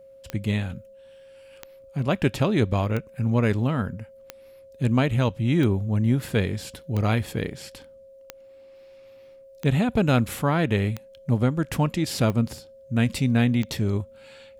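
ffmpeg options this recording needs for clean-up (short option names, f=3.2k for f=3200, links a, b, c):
-af "adeclick=t=4,bandreject=f=540:w=30"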